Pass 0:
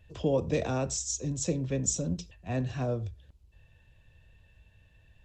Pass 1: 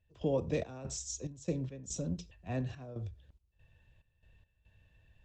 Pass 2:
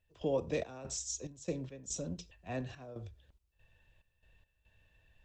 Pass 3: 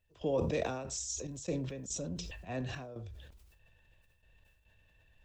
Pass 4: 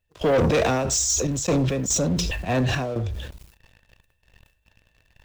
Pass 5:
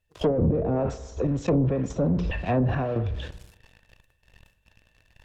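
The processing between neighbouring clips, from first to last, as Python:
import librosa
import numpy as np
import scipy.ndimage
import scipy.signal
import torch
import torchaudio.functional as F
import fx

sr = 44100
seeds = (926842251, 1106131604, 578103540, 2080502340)

y1 = fx.high_shelf(x, sr, hz=6500.0, db=-6.5)
y1 = fx.step_gate(y1, sr, bpm=71, pattern='.xx.xx.x.xxxx', floor_db=-12.0, edge_ms=4.5)
y1 = y1 * librosa.db_to_amplitude(-4.5)
y2 = fx.peak_eq(y1, sr, hz=110.0, db=-8.0, octaves=2.8)
y2 = y2 * librosa.db_to_amplitude(1.5)
y3 = fx.sustainer(y2, sr, db_per_s=39.0)
y4 = fx.leveller(y3, sr, passes=3)
y4 = y4 * librosa.db_to_amplitude(7.0)
y5 = fx.rev_spring(y4, sr, rt60_s=1.1, pass_ms=(49,), chirp_ms=50, drr_db=15.5)
y5 = fx.env_lowpass_down(y5, sr, base_hz=350.0, full_db=-16.5)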